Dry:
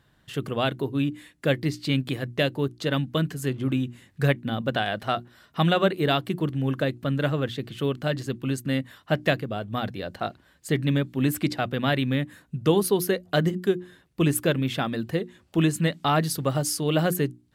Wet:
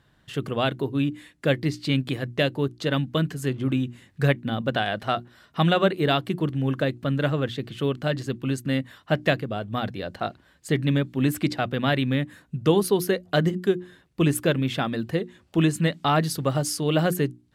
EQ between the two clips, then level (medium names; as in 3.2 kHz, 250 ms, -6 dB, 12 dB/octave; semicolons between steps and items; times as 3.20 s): treble shelf 12 kHz -8.5 dB; +1.0 dB